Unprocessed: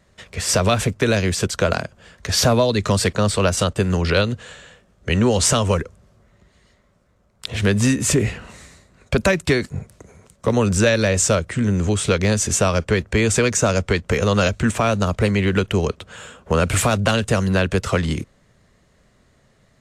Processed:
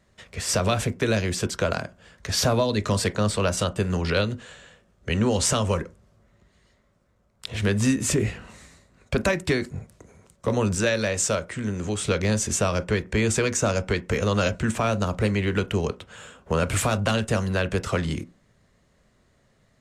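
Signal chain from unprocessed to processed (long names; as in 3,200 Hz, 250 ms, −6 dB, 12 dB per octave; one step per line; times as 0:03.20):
0:10.75–0:12.00: low-shelf EQ 260 Hz −6.5 dB
on a send: convolution reverb RT60 0.25 s, pre-delay 19 ms, DRR 12.5 dB
on the sum: level −5.5 dB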